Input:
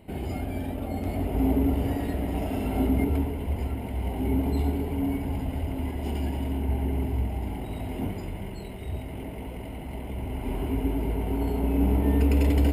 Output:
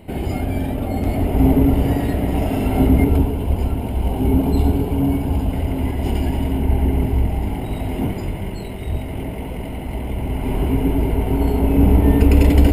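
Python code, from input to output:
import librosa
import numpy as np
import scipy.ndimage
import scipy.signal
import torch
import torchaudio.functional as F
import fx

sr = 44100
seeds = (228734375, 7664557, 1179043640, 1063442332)

y = fx.octave_divider(x, sr, octaves=1, level_db=-5.0)
y = fx.peak_eq(y, sr, hz=2000.0, db=-9.0, octaves=0.25, at=(3.13, 5.53))
y = y * librosa.db_to_amplitude(8.5)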